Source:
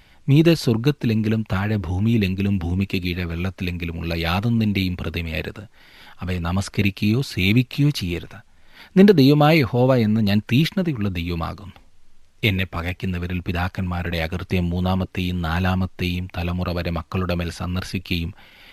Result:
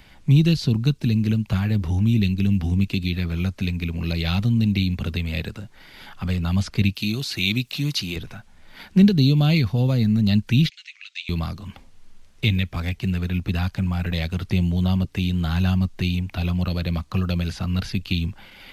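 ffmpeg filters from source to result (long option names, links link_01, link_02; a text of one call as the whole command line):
ffmpeg -i in.wav -filter_complex "[0:a]asettb=1/sr,asplit=3[link_01][link_02][link_03];[link_01]atrim=end=6.954[link_04];[link_02]atrim=start=6.95:end=8.16,asetpts=PTS-STARTPTS,afade=type=in:duration=0.004:curve=qsin,afade=type=out:start_time=1.206:duration=0.004:curve=qsin,aemphasis=mode=production:type=bsi[link_05];[link_03]atrim=start=8.156[link_06];[link_04][link_05]acrossfade=duration=0.004:curve1=hsin:curve2=qsin[link_07];[link_07][link_06]acrossfade=duration=0.004:curve1=qsin:curve2=hsin,asettb=1/sr,asplit=3[link_08][link_09][link_10];[link_08]atrim=end=10.694[link_11];[link_09]atrim=start=10.69:end=11.29,asetpts=PTS-STARTPTS,afade=type=in:duration=0.004:curve=qsin,afade=type=out:start_time=0.596:duration=0.004:curve=qsin,asuperpass=centerf=4100:order=8:qfactor=0.77[link_12];[link_10]atrim=start=11.286[link_13];[link_11][link_12]acrossfade=duration=0.004:curve1=hsin:curve2=qsin[link_14];[link_14][link_13]acrossfade=duration=0.004:curve1=qsin:curve2=hsin,acrossover=split=190|3000[link_15][link_16][link_17];[link_16]acompressor=threshold=-39dB:ratio=2.5[link_18];[link_15][link_18][link_17]amix=inputs=3:normalize=0,equalizer=frequency=200:width_type=o:width=0.77:gain=3,acrossover=split=5800[link_19][link_20];[link_20]acompressor=threshold=-49dB:ratio=4:attack=1:release=60[link_21];[link_19][link_21]amix=inputs=2:normalize=0,volume=2dB" out.wav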